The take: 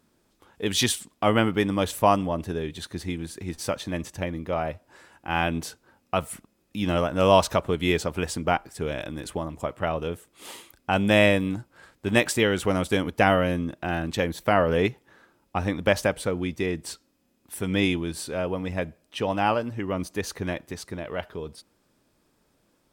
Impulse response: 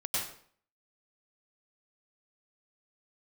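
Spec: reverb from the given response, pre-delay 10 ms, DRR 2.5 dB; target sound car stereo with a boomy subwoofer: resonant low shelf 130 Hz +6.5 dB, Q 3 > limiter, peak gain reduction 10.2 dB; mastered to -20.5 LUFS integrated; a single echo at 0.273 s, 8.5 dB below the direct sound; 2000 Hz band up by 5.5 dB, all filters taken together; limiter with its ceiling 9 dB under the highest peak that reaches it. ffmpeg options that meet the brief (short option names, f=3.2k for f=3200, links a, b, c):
-filter_complex "[0:a]equalizer=f=2k:t=o:g=7,alimiter=limit=-10dB:level=0:latency=1,aecho=1:1:273:0.376,asplit=2[a][b];[1:a]atrim=start_sample=2205,adelay=10[c];[b][c]afir=irnorm=-1:irlink=0,volume=-8dB[d];[a][d]amix=inputs=2:normalize=0,lowshelf=f=130:t=q:w=3:g=6.5,volume=5dB,alimiter=limit=-10.5dB:level=0:latency=1"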